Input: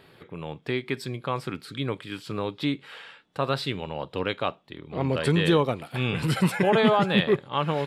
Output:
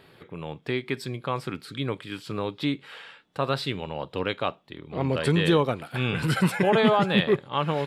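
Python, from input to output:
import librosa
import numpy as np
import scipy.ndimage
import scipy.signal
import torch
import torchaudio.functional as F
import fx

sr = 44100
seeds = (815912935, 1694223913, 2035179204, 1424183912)

y = fx.peak_eq(x, sr, hz=1500.0, db=7.5, octaves=0.24, at=(5.65, 6.51))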